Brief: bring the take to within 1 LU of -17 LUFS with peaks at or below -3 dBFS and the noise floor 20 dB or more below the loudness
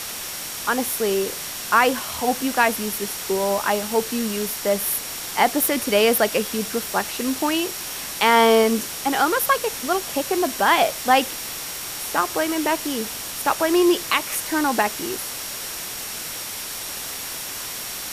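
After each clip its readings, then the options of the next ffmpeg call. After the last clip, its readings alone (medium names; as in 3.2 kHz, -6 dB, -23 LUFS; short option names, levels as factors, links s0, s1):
steady tone 5.6 kHz; tone level -40 dBFS; noise floor -32 dBFS; noise floor target -42 dBFS; loudness -22.0 LUFS; peak level -4.5 dBFS; loudness target -17.0 LUFS
-> -af "bandreject=f=5600:w=30"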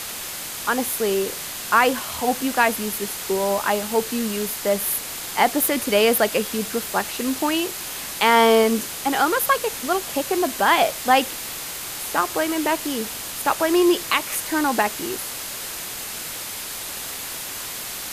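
steady tone not found; noise floor -32 dBFS; noise floor target -42 dBFS
-> -af "afftdn=nr=10:nf=-32"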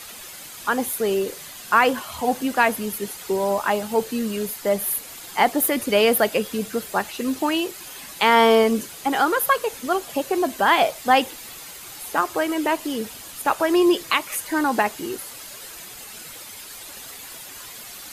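noise floor -39 dBFS; noise floor target -42 dBFS
-> -af "afftdn=nr=6:nf=-39"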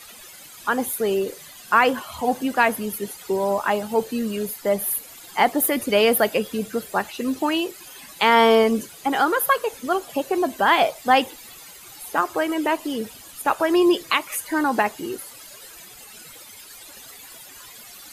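noise floor -44 dBFS; loudness -22.0 LUFS; peak level -5.0 dBFS; loudness target -17.0 LUFS
-> -af "volume=1.78,alimiter=limit=0.708:level=0:latency=1"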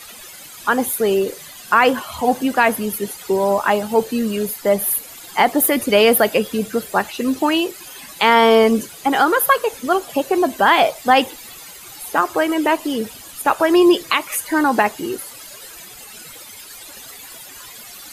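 loudness -17.5 LUFS; peak level -3.0 dBFS; noise floor -39 dBFS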